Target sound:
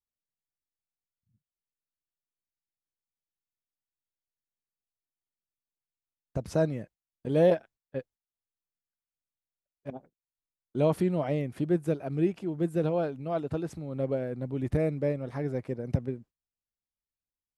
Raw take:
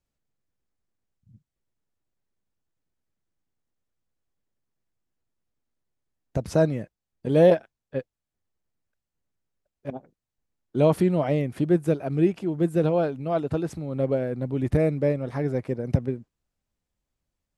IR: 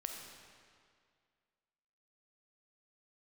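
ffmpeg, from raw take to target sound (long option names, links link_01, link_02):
-af "agate=range=-14dB:threshold=-46dB:ratio=16:detection=peak,volume=-5.5dB"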